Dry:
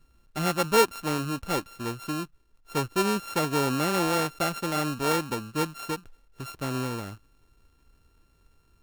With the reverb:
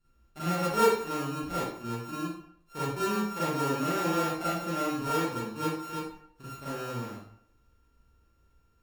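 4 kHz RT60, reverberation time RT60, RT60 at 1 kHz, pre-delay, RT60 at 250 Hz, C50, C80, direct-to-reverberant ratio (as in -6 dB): 0.45 s, 0.65 s, 0.65 s, 32 ms, 0.60 s, -1.5 dB, 3.5 dB, -11.0 dB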